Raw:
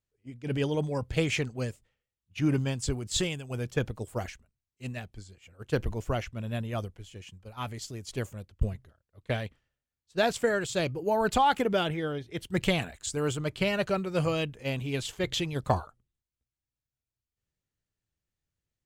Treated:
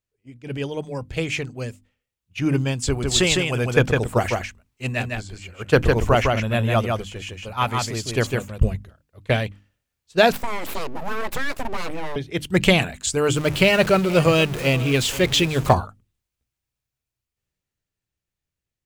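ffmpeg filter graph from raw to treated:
ffmpeg -i in.wav -filter_complex "[0:a]asettb=1/sr,asplit=3[link_01][link_02][link_03];[link_01]atrim=end=2.874[link_04];[link_02]atrim=start=2.87:end=8.63,asetpts=PTS-STARTPTS,afade=type=in:duration=0.004:curve=qsin,afade=type=out:start_time=5.756:duration=0.004:curve=qsin,equalizer=frequency=1200:width=0.52:gain=5,aecho=1:1:156:0.668,atrim=end_sample=254016[link_05];[link_03]atrim=start=8.626[link_06];[link_04][link_05]acrossfade=duration=0.004:curve1=hsin:curve2=qsin[link_07];[link_07][link_06]acrossfade=duration=0.004:curve1=qsin:curve2=hsin,asettb=1/sr,asplit=3[link_08][link_09][link_10];[link_08]atrim=end=10.324[link_11];[link_09]atrim=start=10.32:end=12.16,asetpts=PTS-STARTPTS,afade=type=in:duration=0.004:curve=qsin,afade=type=out:start_time=1.836:duration=0.004:curve=qsin,equalizer=frequency=2600:width_type=o:width=0.92:gain=-10.5,acompressor=threshold=-34dB:ratio=2.5:attack=3.2:release=140:knee=1:detection=peak,aeval=exprs='abs(val(0))':channel_layout=same[link_12];[link_10]atrim=start=12.156[link_13];[link_11][link_12]acrossfade=duration=0.004:curve1=hsin:curve2=qsin[link_14];[link_14][link_13]acrossfade=duration=0.004:curve1=qsin:curve2=hsin,asettb=1/sr,asplit=3[link_15][link_16][link_17];[link_15]atrim=end=13.364[link_18];[link_16]atrim=start=13.36:end=15.73,asetpts=PTS-STARTPTS,afade=type=in:duration=0.004:curve=qsin,afade=type=out:start_time=2.366:duration=0.004:curve=qsin,aeval=exprs='val(0)+0.5*0.015*sgn(val(0))':channel_layout=same,aecho=1:1:479:0.141,atrim=end_sample=104517[link_19];[link_17]atrim=start=15.726[link_20];[link_18][link_19]acrossfade=duration=0.004:curve1=hsin:curve2=qsin[link_21];[link_21][link_20]acrossfade=duration=0.004:curve1=qsin:curve2=hsin,equalizer=frequency=2500:width_type=o:width=0.37:gain=3,bandreject=frequency=50:width_type=h:width=6,bandreject=frequency=100:width_type=h:width=6,bandreject=frequency=150:width_type=h:width=6,bandreject=frequency=200:width_type=h:width=6,bandreject=frequency=250:width_type=h:width=6,bandreject=frequency=300:width_type=h:width=6,dynaudnorm=framelen=590:gausssize=9:maxgain=11.5dB,volume=1dB" out.wav

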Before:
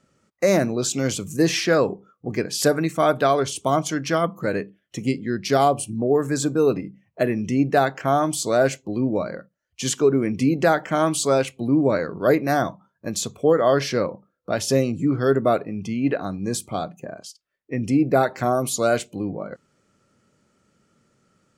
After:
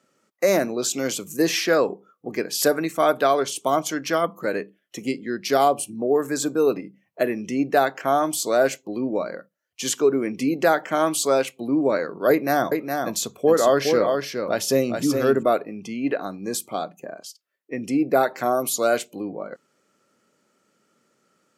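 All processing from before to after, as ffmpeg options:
ffmpeg -i in.wav -filter_complex "[0:a]asettb=1/sr,asplit=3[link_01][link_02][link_03];[link_01]atrim=end=12.304[link_04];[link_02]atrim=start=12.3:end=15.43,asetpts=PTS-STARTPTS,afade=type=in:duration=0.004:curve=qsin,afade=type=out:start_time=3.126:duration=0.004:curve=qsin,lowshelf=frequency=110:gain=11.5,aecho=1:1:414:0.562,atrim=end_sample=138033[link_05];[link_03]atrim=start=15.426[link_06];[link_04][link_05]acrossfade=duration=0.004:curve1=hsin:curve2=qsin[link_07];[link_07][link_06]acrossfade=duration=0.004:curve1=qsin:curve2=hsin,highpass=270,equalizer=frequency=12000:width=4.7:gain=10" out.wav

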